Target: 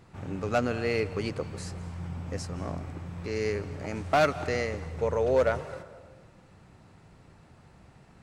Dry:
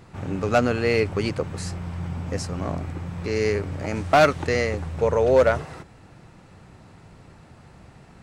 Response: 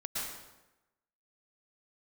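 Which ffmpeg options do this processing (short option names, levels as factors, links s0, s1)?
-filter_complex "[0:a]asplit=2[s0][s1];[1:a]atrim=start_sample=2205,asetrate=30429,aresample=44100[s2];[s1][s2]afir=irnorm=-1:irlink=0,volume=0.0944[s3];[s0][s3]amix=inputs=2:normalize=0,volume=0.422"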